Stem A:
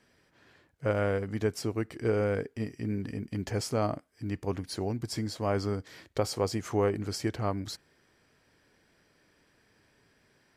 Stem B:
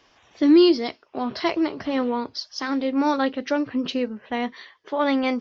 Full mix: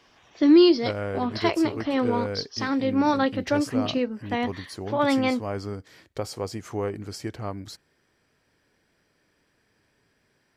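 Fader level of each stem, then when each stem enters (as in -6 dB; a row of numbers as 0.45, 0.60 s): -2.0, -0.5 dB; 0.00, 0.00 s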